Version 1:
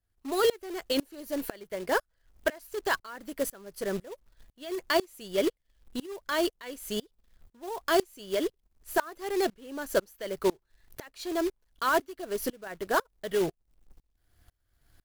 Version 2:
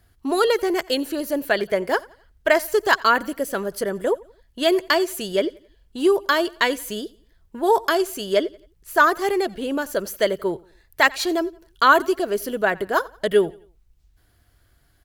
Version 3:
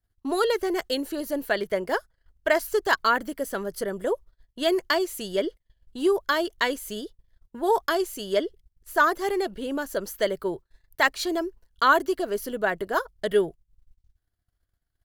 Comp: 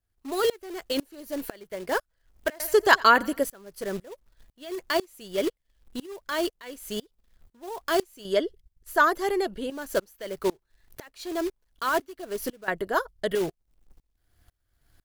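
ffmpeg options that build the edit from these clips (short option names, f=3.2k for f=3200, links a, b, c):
-filter_complex "[2:a]asplit=2[a][b];[0:a]asplit=4[c][d][e][f];[c]atrim=end=2.602[g];[1:a]atrim=start=2.598:end=3.432[h];[d]atrim=start=3.428:end=8.252[i];[a]atrim=start=8.248:end=9.702[j];[e]atrim=start=9.698:end=12.682[k];[b]atrim=start=12.678:end=13.352[l];[f]atrim=start=13.348[m];[g][h]acrossfade=d=0.004:c1=hsin:c2=hsin[n];[n][i]acrossfade=d=0.004:c1=hsin:c2=hsin[o];[o][j]acrossfade=d=0.004:c1=hsin:c2=hsin[p];[p][k]acrossfade=d=0.004:c1=hsin:c2=hsin[q];[q][l]acrossfade=d=0.004:c1=hsin:c2=hsin[r];[r][m]acrossfade=d=0.004:c1=hsin:c2=hsin"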